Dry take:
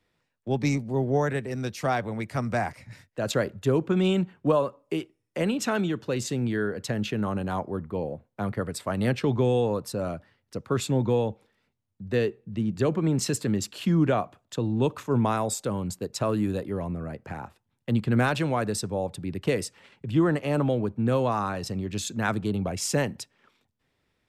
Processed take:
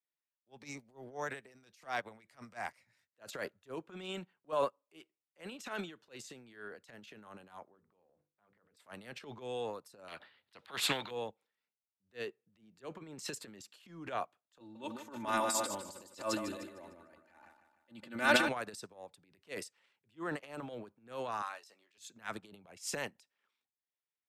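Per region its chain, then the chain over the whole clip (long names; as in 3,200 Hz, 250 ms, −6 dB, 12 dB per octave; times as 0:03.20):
0:07.65–0:08.77: mains-hum notches 50/100/150/200/250/300/350/400/450/500 Hz + downward compressor 3 to 1, threshold −39 dBFS + high-frequency loss of the air 250 metres
0:10.08–0:11.11: high shelf with overshoot 4,800 Hz −7.5 dB, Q 3 + every bin compressed towards the loudest bin 2 to 1
0:14.60–0:18.49: comb filter 3.4 ms, depth 85% + repeating echo 151 ms, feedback 50%, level −6 dB
0:21.42–0:21.98: Bessel high-pass filter 780 Hz + double-tracking delay 14 ms −9 dB
whole clip: high-pass filter 1,000 Hz 6 dB per octave; transient designer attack −10 dB, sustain +8 dB; expander for the loud parts 2.5 to 1, over −42 dBFS; level +2 dB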